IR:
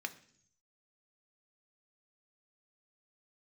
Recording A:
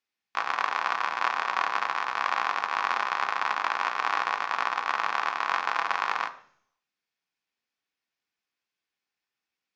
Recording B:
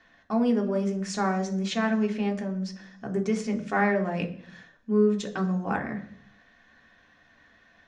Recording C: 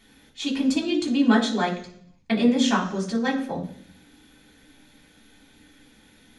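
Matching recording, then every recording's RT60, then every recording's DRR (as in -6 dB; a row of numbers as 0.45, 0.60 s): A; 0.60, 0.60, 0.60 s; 6.5, 2.5, -5.5 dB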